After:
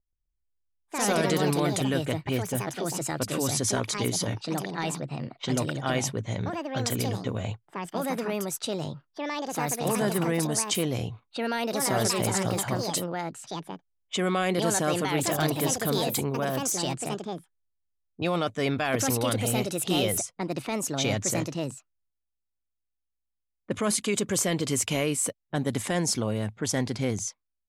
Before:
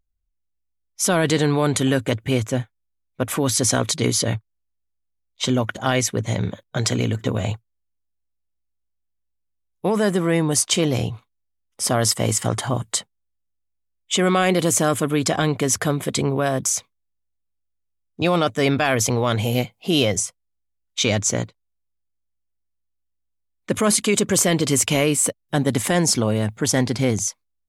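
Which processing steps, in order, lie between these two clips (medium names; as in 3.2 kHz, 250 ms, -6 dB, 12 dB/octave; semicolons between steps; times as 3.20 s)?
ever faster or slower copies 128 ms, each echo +4 st, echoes 2; level-controlled noise filter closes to 730 Hz, open at -16.5 dBFS; trim -8 dB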